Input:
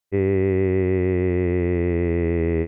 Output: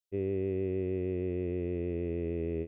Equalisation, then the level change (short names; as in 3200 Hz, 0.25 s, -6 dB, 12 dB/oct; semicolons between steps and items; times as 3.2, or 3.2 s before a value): low shelf 410 Hz -5 dB; band shelf 1300 Hz -14.5 dB; -9.0 dB